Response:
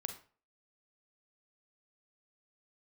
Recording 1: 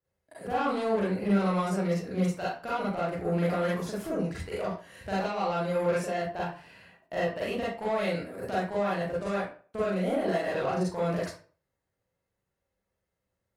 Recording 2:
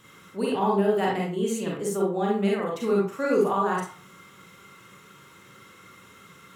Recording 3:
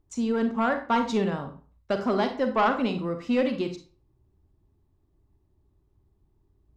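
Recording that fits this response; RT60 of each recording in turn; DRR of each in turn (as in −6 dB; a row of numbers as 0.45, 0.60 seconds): 3; 0.40, 0.40, 0.40 seconds; −8.5, −3.0, 6.5 decibels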